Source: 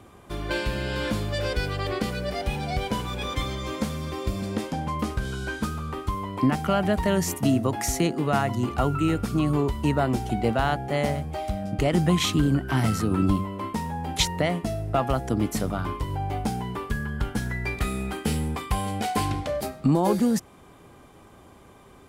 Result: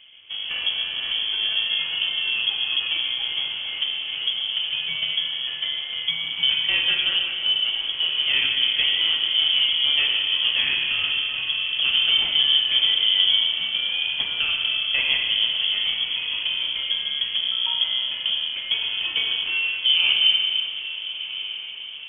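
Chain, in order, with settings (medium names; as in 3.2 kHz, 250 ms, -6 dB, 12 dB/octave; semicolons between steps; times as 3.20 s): median filter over 25 samples; 7.04–8.09 s: static phaser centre 340 Hz, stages 4; on a send: echo that smears into a reverb 1303 ms, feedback 55%, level -12.5 dB; on the sum: Schroeder reverb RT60 2.6 s, combs from 29 ms, DRR 0.5 dB; frequency inversion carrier 3.3 kHz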